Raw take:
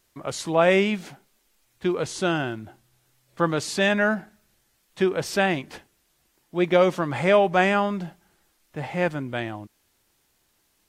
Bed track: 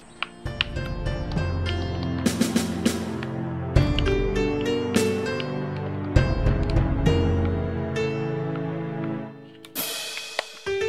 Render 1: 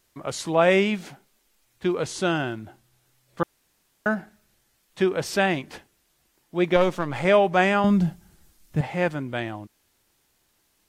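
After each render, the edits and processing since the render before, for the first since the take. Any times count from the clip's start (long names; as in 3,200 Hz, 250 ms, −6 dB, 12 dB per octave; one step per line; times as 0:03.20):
0:03.43–0:04.06: fill with room tone
0:06.76–0:07.25: gain on one half-wave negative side −7 dB
0:07.84–0:08.81: bass and treble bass +15 dB, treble +6 dB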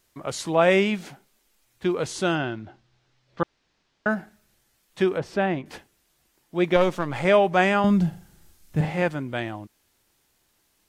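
0:02.35–0:04.09: low-pass filter 5,400 Hz 24 dB per octave
0:05.18–0:05.66: low-pass filter 1,100 Hz 6 dB per octave
0:08.09–0:09.02: flutter between parallel walls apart 6.6 metres, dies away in 0.41 s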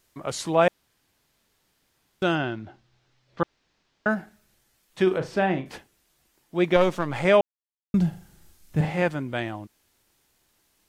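0:00.68–0:02.22: fill with room tone
0:05.03–0:05.72: flutter between parallel walls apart 6.4 metres, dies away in 0.24 s
0:07.41–0:07.94: silence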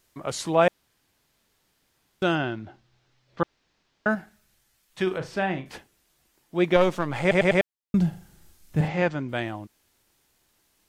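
0:04.15–0:05.75: parametric band 360 Hz −5 dB 2.5 octaves
0:07.21: stutter in place 0.10 s, 4 plays
0:08.88–0:09.29: Butterworth low-pass 7,000 Hz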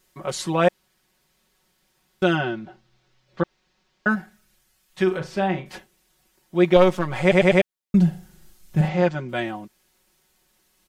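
comb filter 5.4 ms, depth 86%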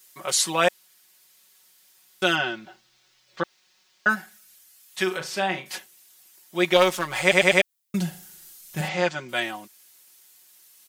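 spectral tilt +4 dB per octave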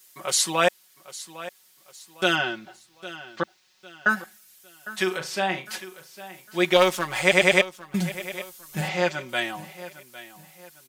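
repeating echo 805 ms, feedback 37%, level −16 dB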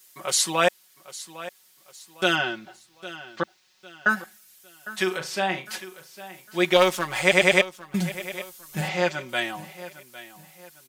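no processing that can be heard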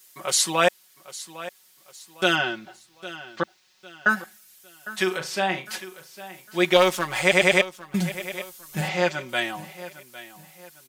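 level +1 dB
brickwall limiter −3 dBFS, peak gain reduction 2.5 dB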